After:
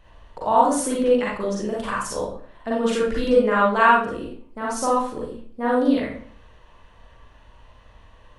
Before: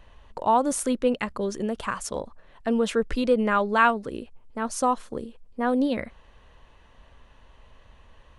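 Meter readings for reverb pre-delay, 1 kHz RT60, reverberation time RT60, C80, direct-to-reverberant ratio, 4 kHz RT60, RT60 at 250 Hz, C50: 37 ms, 0.50 s, 0.50 s, 6.0 dB, -5.5 dB, 0.40 s, 0.60 s, -0.5 dB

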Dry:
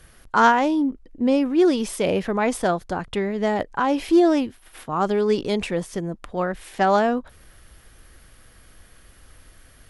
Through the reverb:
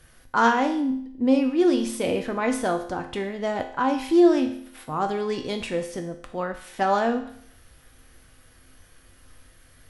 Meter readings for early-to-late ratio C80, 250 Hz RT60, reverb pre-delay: 12.5 dB, 0.65 s, 4 ms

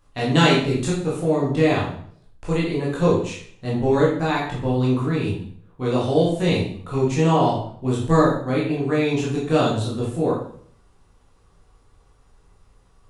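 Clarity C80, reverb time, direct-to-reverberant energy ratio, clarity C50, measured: 7.5 dB, 0.55 s, -6.5 dB, 3.0 dB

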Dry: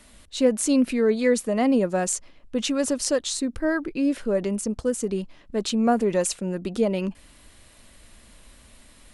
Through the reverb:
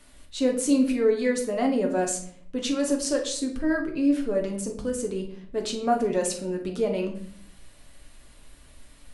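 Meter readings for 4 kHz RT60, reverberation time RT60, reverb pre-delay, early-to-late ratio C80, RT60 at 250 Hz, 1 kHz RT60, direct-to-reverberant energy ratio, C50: 0.45 s, 0.60 s, 7 ms, 13.0 dB, 0.80 s, 0.55 s, 1.0 dB, 8.5 dB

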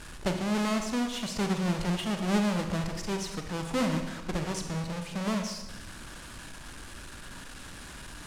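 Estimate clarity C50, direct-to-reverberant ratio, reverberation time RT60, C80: 6.0 dB, 4.5 dB, 1.1 s, 8.0 dB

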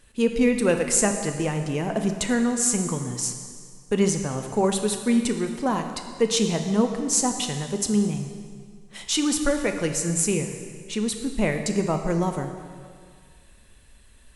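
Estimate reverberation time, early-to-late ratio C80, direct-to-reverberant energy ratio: 2.0 s, 8.0 dB, 5.0 dB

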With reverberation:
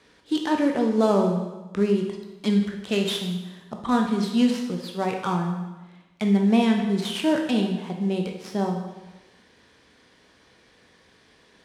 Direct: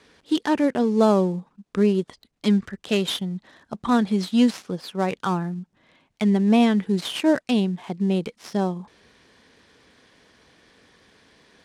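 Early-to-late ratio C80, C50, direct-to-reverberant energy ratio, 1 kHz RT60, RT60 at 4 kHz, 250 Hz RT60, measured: 7.5 dB, 5.0 dB, 2.0 dB, 1.1 s, 1.0 s, 1.1 s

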